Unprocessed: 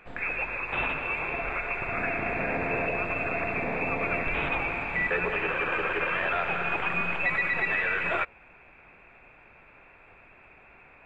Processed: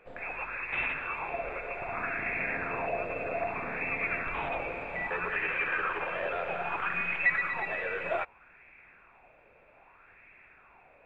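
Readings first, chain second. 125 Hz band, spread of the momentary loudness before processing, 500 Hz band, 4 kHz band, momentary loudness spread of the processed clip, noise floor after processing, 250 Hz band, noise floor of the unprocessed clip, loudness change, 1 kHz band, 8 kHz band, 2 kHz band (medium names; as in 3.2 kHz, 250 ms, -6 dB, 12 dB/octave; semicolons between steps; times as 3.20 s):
-8.5 dB, 4 LU, -3.5 dB, -7.0 dB, 6 LU, -60 dBFS, -8.0 dB, -55 dBFS, -4.0 dB, -3.0 dB, no reading, -4.0 dB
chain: sweeping bell 0.63 Hz 500–2100 Hz +12 dB; trim -8.5 dB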